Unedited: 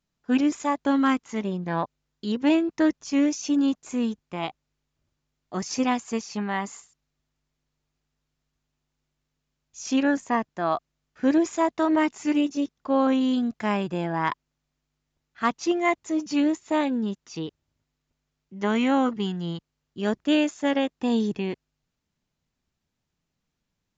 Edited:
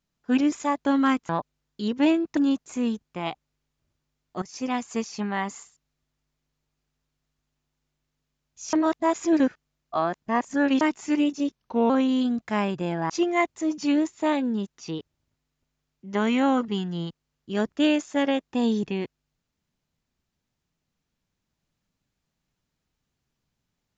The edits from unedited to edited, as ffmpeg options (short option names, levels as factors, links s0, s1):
-filter_complex "[0:a]asplit=9[s0][s1][s2][s3][s4][s5][s6][s7][s8];[s0]atrim=end=1.292[s9];[s1]atrim=start=1.728:end=2.812[s10];[s2]atrim=start=3.538:end=5.59,asetpts=PTS-STARTPTS,afade=t=out:st=2.048:d=0.004:c=hsin:silence=0.177828[s11];[s3]atrim=start=5.59:end=9.902,asetpts=PTS-STARTPTS,afade=t=in:d=0.52:silence=0.177828[s12];[s4]atrim=start=9.898:end=11.982,asetpts=PTS-STARTPTS,areverse[s13];[s5]atrim=start=11.978:end=12.734[s14];[s6]atrim=start=12.73:end=13.02,asetpts=PTS-STARTPTS,asetrate=37926,aresample=44100[s15];[s7]atrim=start=13.016:end=14.222[s16];[s8]atrim=start=15.578[s17];[s9][s10]acrossfade=d=0.004:c1=hsin:c2=hsin[s18];[s11][s12]concat=n=2:v=0:a=1[s19];[s18][s19]acrossfade=d=0.004:c1=hsin:c2=hsin[s20];[s20][s13]acrossfade=d=0.004:c1=hsin:c2=hsin[s21];[s21][s14]acrossfade=d=0.004:c1=hsin:c2=hsin[s22];[s22][s15]acrossfade=d=0.004:c1=hsin:c2=hsin[s23];[s23][s16]acrossfade=d=0.004:c1=hsin:c2=hsin[s24];[s24][s17]acrossfade=d=0.004:c1=hsin:c2=hsin"